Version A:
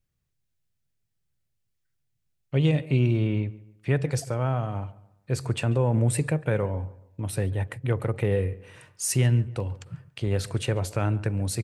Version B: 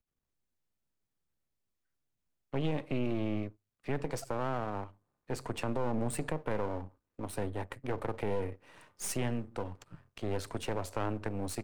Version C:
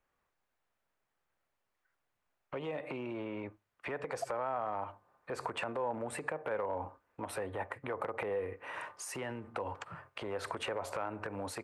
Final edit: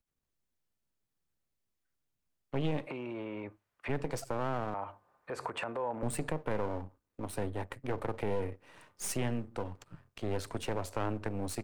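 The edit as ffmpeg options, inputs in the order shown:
-filter_complex "[2:a]asplit=2[a][b];[1:a]asplit=3[c][d][e];[c]atrim=end=2.872[f];[a]atrim=start=2.868:end=3.892[g];[d]atrim=start=3.888:end=4.742[h];[b]atrim=start=4.738:end=6.032[i];[e]atrim=start=6.028[j];[f][g]acrossfade=d=0.004:c1=hsin:c2=hsin[k];[k][h]acrossfade=d=0.004:c1=hsin:c2=hsin[l];[l][i]acrossfade=d=0.004:c1=hsin:c2=hsin[m];[m][j]acrossfade=d=0.004:c1=hsin:c2=hsin"

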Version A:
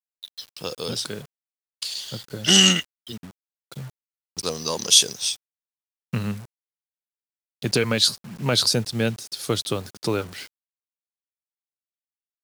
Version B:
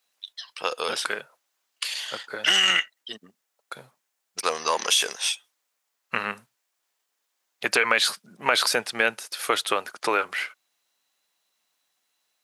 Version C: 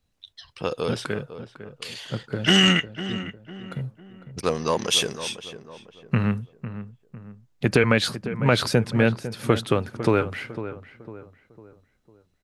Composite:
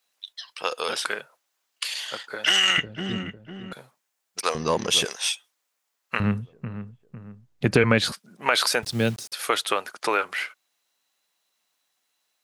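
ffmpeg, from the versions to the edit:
-filter_complex "[2:a]asplit=3[a][b][c];[1:a]asplit=5[d][e][f][g][h];[d]atrim=end=2.782[i];[a]atrim=start=2.778:end=3.732[j];[e]atrim=start=3.728:end=4.552[k];[b]atrim=start=4.548:end=5.052[l];[f]atrim=start=5.048:end=6.202[m];[c]atrim=start=6.198:end=8.122[n];[g]atrim=start=8.118:end=8.832[o];[0:a]atrim=start=8.828:end=9.322[p];[h]atrim=start=9.318[q];[i][j]acrossfade=d=0.004:c1=hsin:c2=hsin[r];[r][k]acrossfade=d=0.004:c1=hsin:c2=hsin[s];[s][l]acrossfade=d=0.004:c1=hsin:c2=hsin[t];[t][m]acrossfade=d=0.004:c1=hsin:c2=hsin[u];[u][n]acrossfade=d=0.004:c1=hsin:c2=hsin[v];[v][o]acrossfade=d=0.004:c1=hsin:c2=hsin[w];[w][p]acrossfade=d=0.004:c1=hsin:c2=hsin[x];[x][q]acrossfade=d=0.004:c1=hsin:c2=hsin"

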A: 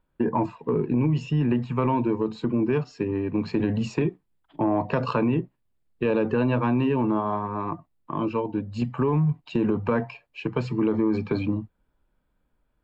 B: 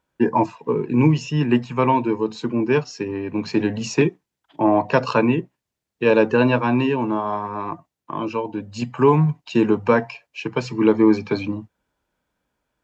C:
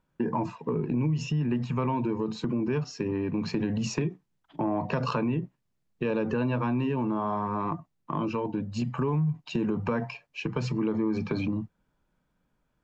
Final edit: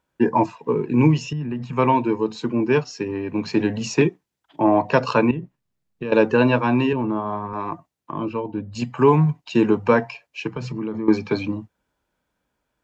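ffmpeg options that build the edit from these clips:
-filter_complex "[2:a]asplit=3[a][b][c];[0:a]asplit=2[d][e];[1:a]asplit=6[f][g][h][i][j][k];[f]atrim=end=1.332[l];[a]atrim=start=1.328:end=1.732[m];[g]atrim=start=1.728:end=5.312[n];[b]atrim=start=5.308:end=6.122[o];[h]atrim=start=6.118:end=6.932[p];[d]atrim=start=6.928:end=7.532[q];[i]atrim=start=7.528:end=8.122[r];[e]atrim=start=8.118:end=8.752[s];[j]atrim=start=8.748:end=10.532[t];[c]atrim=start=10.528:end=11.082[u];[k]atrim=start=11.078[v];[l][m]acrossfade=d=0.004:c1=hsin:c2=hsin[w];[w][n]acrossfade=d=0.004:c1=hsin:c2=hsin[x];[x][o]acrossfade=d=0.004:c1=hsin:c2=hsin[y];[y][p]acrossfade=d=0.004:c1=hsin:c2=hsin[z];[z][q]acrossfade=d=0.004:c1=hsin:c2=hsin[aa];[aa][r]acrossfade=d=0.004:c1=hsin:c2=hsin[ab];[ab][s]acrossfade=d=0.004:c1=hsin:c2=hsin[ac];[ac][t]acrossfade=d=0.004:c1=hsin:c2=hsin[ad];[ad][u]acrossfade=d=0.004:c1=hsin:c2=hsin[ae];[ae][v]acrossfade=d=0.004:c1=hsin:c2=hsin"

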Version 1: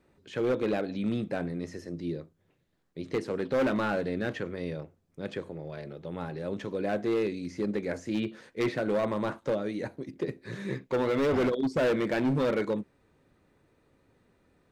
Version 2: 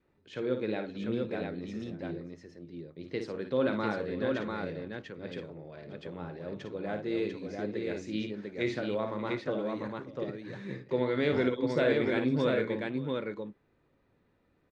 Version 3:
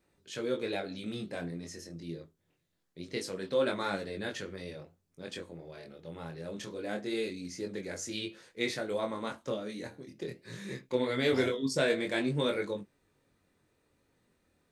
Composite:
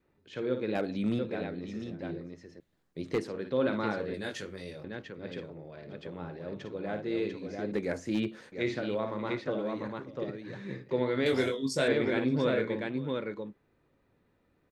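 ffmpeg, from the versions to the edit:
-filter_complex "[0:a]asplit=3[a][b][c];[2:a]asplit=2[d][e];[1:a]asplit=6[f][g][h][i][j][k];[f]atrim=end=0.752[l];[a]atrim=start=0.748:end=1.192[m];[g]atrim=start=1.188:end=2.602[n];[b]atrim=start=2.598:end=3.282[o];[h]atrim=start=3.278:end=4.142[p];[d]atrim=start=4.138:end=4.842[q];[i]atrim=start=4.838:end=7.722[r];[c]atrim=start=7.718:end=8.522[s];[j]atrim=start=8.518:end=11.262[t];[e]atrim=start=11.258:end=11.882[u];[k]atrim=start=11.878[v];[l][m]acrossfade=d=0.004:c1=hsin:c2=hsin[w];[w][n]acrossfade=d=0.004:c1=hsin:c2=hsin[x];[x][o]acrossfade=d=0.004:c1=hsin:c2=hsin[y];[y][p]acrossfade=d=0.004:c1=hsin:c2=hsin[z];[z][q]acrossfade=d=0.004:c1=hsin:c2=hsin[aa];[aa][r]acrossfade=d=0.004:c1=hsin:c2=hsin[ab];[ab][s]acrossfade=d=0.004:c1=hsin:c2=hsin[ac];[ac][t]acrossfade=d=0.004:c1=hsin:c2=hsin[ad];[ad][u]acrossfade=d=0.004:c1=hsin:c2=hsin[ae];[ae][v]acrossfade=d=0.004:c1=hsin:c2=hsin"

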